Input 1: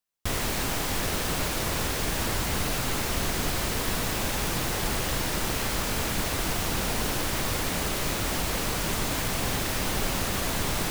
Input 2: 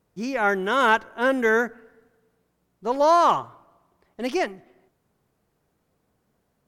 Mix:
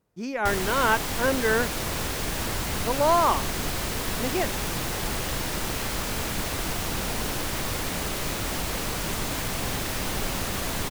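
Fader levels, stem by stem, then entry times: −1.0, −3.5 decibels; 0.20, 0.00 seconds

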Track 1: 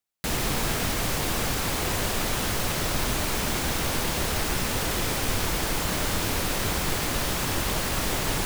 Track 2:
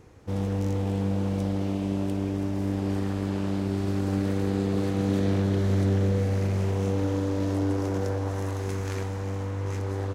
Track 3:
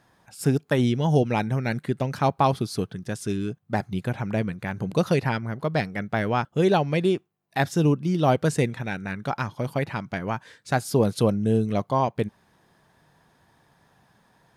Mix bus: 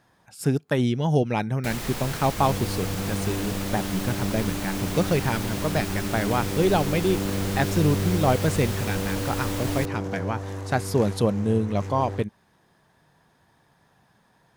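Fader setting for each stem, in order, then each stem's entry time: −6.5, −3.5, −1.0 decibels; 1.40, 2.10, 0.00 seconds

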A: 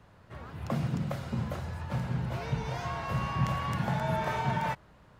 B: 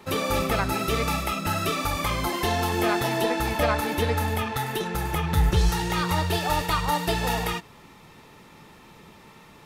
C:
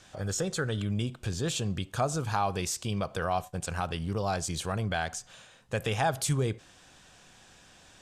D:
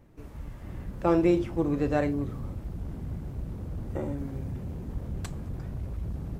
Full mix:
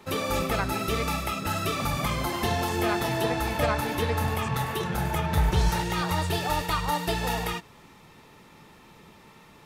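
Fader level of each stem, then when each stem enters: −3.0 dB, −2.5 dB, −13.0 dB, muted; 1.10 s, 0.00 s, 0.00 s, muted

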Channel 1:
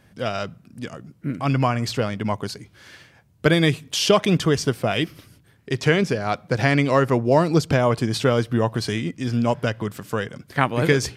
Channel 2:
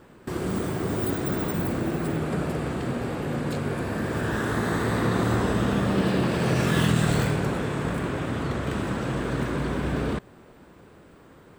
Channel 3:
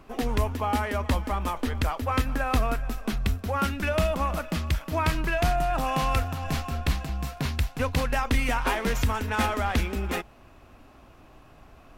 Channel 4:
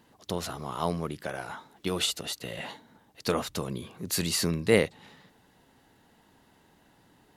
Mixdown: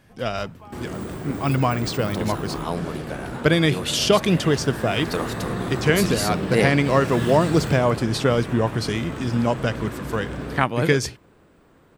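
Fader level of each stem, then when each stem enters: −0.5, −4.5, −17.0, +1.0 decibels; 0.00, 0.45, 0.00, 1.85 seconds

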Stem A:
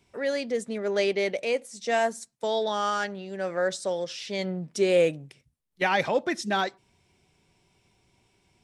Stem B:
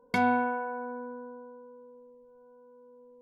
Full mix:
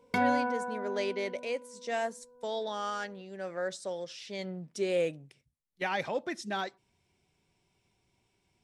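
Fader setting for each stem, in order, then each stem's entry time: −8.0, −2.0 decibels; 0.00, 0.00 seconds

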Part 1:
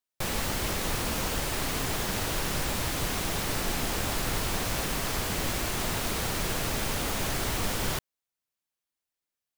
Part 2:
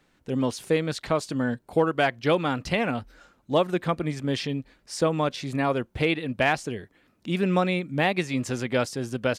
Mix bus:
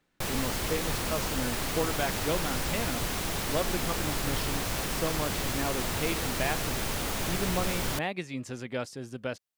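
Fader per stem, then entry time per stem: −1.5, −9.0 decibels; 0.00, 0.00 seconds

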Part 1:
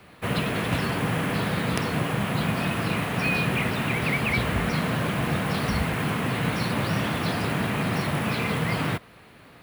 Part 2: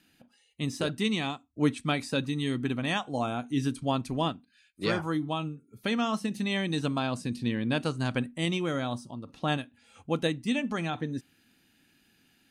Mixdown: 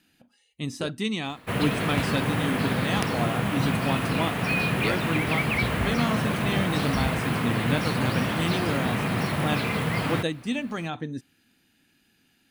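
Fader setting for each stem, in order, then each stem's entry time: −0.5, 0.0 decibels; 1.25, 0.00 seconds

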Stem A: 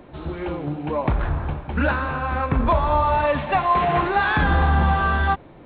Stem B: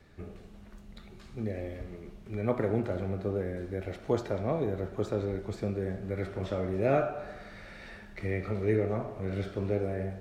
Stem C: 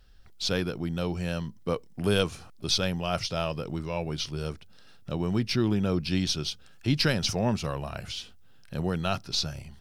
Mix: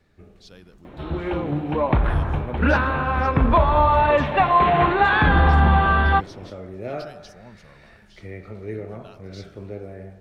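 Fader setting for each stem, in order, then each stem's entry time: +2.5, −4.5, −19.5 decibels; 0.85, 0.00, 0.00 seconds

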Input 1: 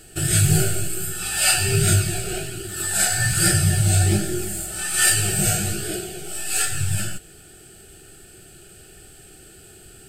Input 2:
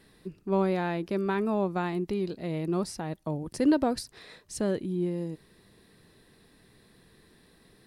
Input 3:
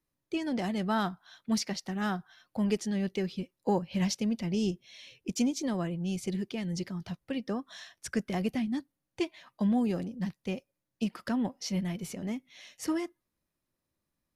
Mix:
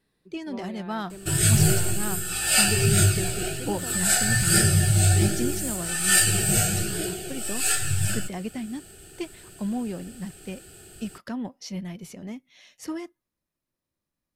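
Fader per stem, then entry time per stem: −1.5, −14.5, −2.0 decibels; 1.10, 0.00, 0.00 seconds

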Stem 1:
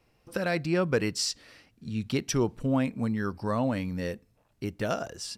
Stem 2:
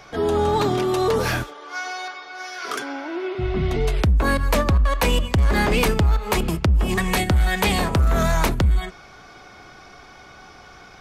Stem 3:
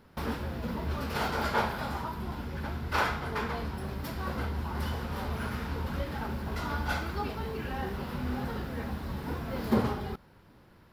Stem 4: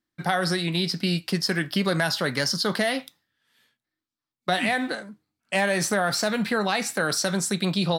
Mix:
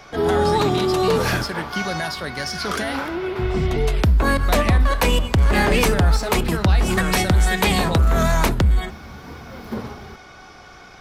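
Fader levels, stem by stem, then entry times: −19.0, +1.5, −3.0, −4.0 decibels; 2.35, 0.00, 0.00, 0.00 seconds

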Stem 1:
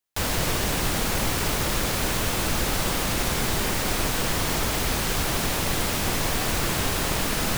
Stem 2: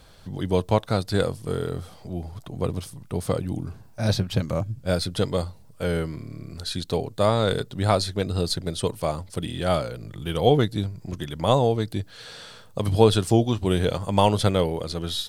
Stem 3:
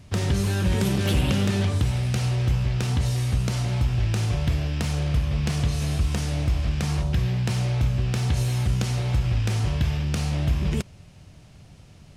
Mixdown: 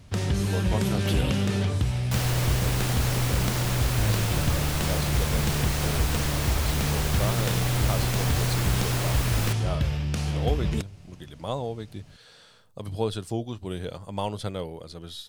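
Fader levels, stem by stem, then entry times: −5.0, −11.0, −2.5 decibels; 1.95, 0.00, 0.00 seconds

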